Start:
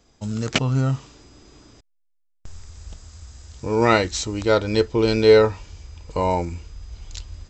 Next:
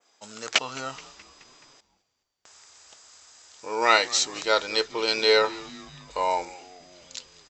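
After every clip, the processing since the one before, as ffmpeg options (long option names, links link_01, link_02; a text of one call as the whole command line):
ffmpeg -i in.wav -filter_complex "[0:a]highpass=710,adynamicequalizer=threshold=0.0141:dfrequency=4500:dqfactor=0.82:tfrequency=4500:tqfactor=0.82:attack=5:release=100:ratio=0.375:range=2.5:mode=boostabove:tftype=bell,asplit=6[link_01][link_02][link_03][link_04][link_05][link_06];[link_02]adelay=213,afreqshift=-97,volume=-20.5dB[link_07];[link_03]adelay=426,afreqshift=-194,volume=-24.9dB[link_08];[link_04]adelay=639,afreqshift=-291,volume=-29.4dB[link_09];[link_05]adelay=852,afreqshift=-388,volume=-33.8dB[link_10];[link_06]adelay=1065,afreqshift=-485,volume=-38.2dB[link_11];[link_01][link_07][link_08][link_09][link_10][link_11]amix=inputs=6:normalize=0" out.wav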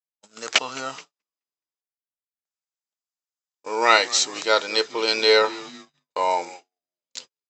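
ffmpeg -i in.wav -af "agate=range=-49dB:threshold=-41dB:ratio=16:detection=peak,highpass=180,volume=3dB" out.wav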